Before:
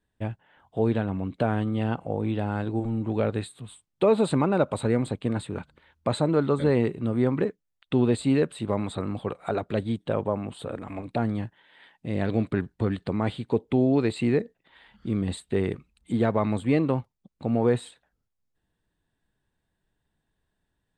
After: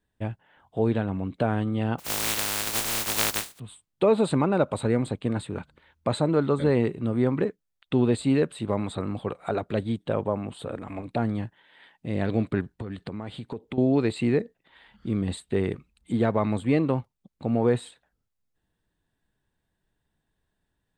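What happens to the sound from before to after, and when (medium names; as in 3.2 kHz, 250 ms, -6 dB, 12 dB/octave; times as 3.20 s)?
1.98–3.58 s: spectral contrast reduction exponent 0.1
12.61–13.78 s: compression, threshold -30 dBFS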